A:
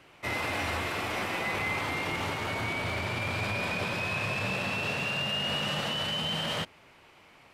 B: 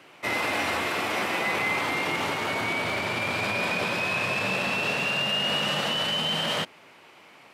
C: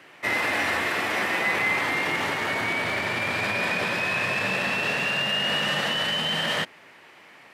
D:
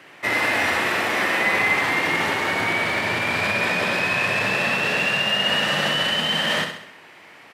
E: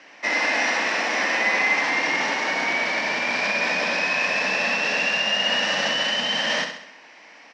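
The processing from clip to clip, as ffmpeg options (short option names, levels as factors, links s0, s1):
-af "highpass=180,volume=1.78"
-af "equalizer=f=1800:w=4.8:g=9"
-af "aecho=1:1:66|132|198|264|330|396:0.447|0.219|0.107|0.0526|0.0258|0.0126,volume=1.41"
-af "highpass=f=220:w=0.5412,highpass=f=220:w=1.3066,equalizer=f=380:t=q:w=4:g=-10,equalizer=f=1300:t=q:w=4:g=-6,equalizer=f=3400:t=q:w=4:g=-4,equalizer=f=5600:t=q:w=4:g=10,lowpass=f=6100:w=0.5412,lowpass=f=6100:w=1.3066"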